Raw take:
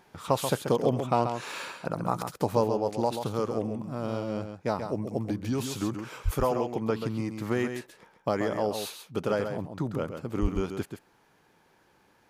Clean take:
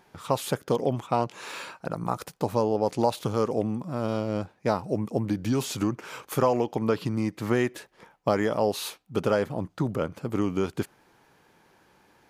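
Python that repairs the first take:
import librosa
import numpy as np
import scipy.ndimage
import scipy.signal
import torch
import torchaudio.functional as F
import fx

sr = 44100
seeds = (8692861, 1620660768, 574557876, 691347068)

y = fx.highpass(x, sr, hz=140.0, slope=24, at=(6.24, 6.36), fade=0.02)
y = fx.highpass(y, sr, hz=140.0, slope=24, at=(10.41, 10.53), fade=0.02)
y = fx.fix_echo_inverse(y, sr, delay_ms=134, level_db=-7.5)
y = fx.fix_level(y, sr, at_s=2.64, step_db=4.0)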